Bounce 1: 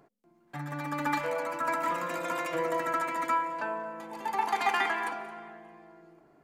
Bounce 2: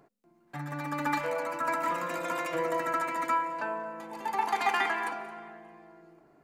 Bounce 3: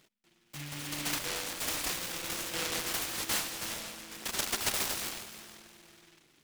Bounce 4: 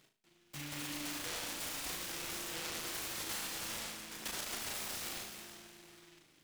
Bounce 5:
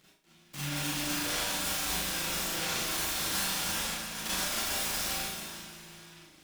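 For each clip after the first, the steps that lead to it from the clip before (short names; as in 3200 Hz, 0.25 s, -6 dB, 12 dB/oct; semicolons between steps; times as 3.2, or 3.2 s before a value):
notch 3300 Hz, Q 22
noise-modulated delay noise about 2400 Hz, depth 0.45 ms; gain -4.5 dB
flutter echo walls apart 6.4 m, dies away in 0.36 s; limiter -30 dBFS, peak gain reduction 11 dB; gain -2.5 dB
reverb RT60 0.30 s, pre-delay 36 ms, DRR -6 dB; gain +2 dB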